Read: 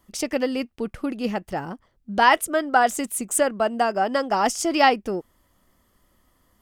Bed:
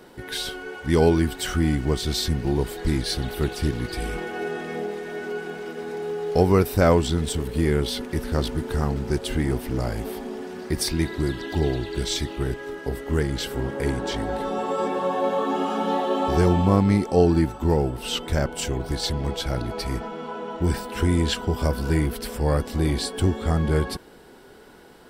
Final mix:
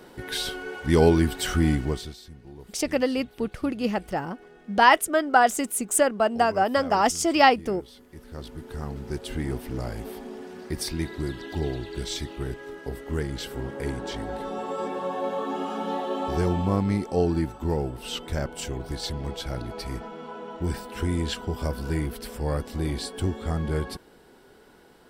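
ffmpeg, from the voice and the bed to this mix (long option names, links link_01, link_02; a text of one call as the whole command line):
ffmpeg -i stem1.wav -i stem2.wav -filter_complex "[0:a]adelay=2600,volume=0dB[link_01];[1:a]volume=16dB,afade=type=out:start_time=1.71:duration=0.45:silence=0.0841395,afade=type=in:start_time=8.06:duration=1.43:silence=0.158489[link_02];[link_01][link_02]amix=inputs=2:normalize=0" out.wav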